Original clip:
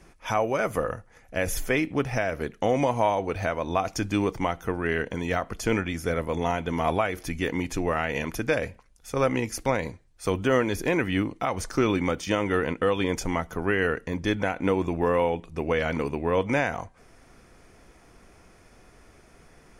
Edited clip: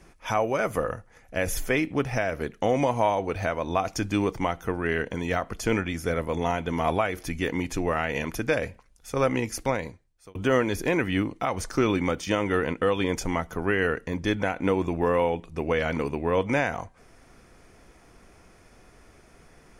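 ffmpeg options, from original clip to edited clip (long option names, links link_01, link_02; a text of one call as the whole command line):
ffmpeg -i in.wav -filter_complex "[0:a]asplit=2[link_01][link_02];[link_01]atrim=end=10.35,asetpts=PTS-STARTPTS,afade=type=out:start_time=9.61:duration=0.74[link_03];[link_02]atrim=start=10.35,asetpts=PTS-STARTPTS,afade=type=in:duration=0.004:curve=hsin[link_04];[link_03][link_04]concat=n=2:v=0:a=1" out.wav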